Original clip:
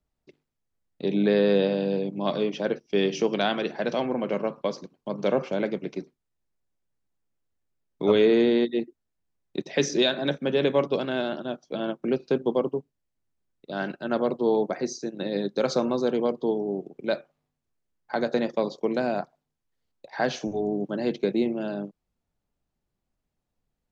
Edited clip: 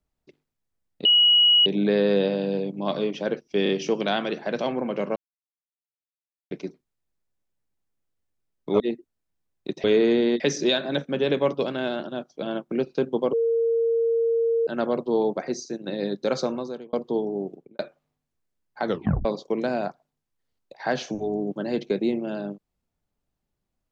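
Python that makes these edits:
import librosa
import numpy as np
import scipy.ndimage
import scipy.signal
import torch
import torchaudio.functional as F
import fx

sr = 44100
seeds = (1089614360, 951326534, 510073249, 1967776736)

y = fx.studio_fade_out(x, sr, start_s=16.85, length_s=0.27)
y = fx.edit(y, sr, fx.insert_tone(at_s=1.05, length_s=0.61, hz=2910.0, db=-13.5),
    fx.stutter(start_s=3.02, slice_s=0.03, count=3),
    fx.silence(start_s=4.49, length_s=1.35),
    fx.move(start_s=8.13, length_s=0.56, to_s=9.73),
    fx.bleep(start_s=12.66, length_s=1.34, hz=460.0, db=-19.0),
    fx.fade_out_span(start_s=15.67, length_s=0.59),
    fx.tape_stop(start_s=18.19, length_s=0.39), tone=tone)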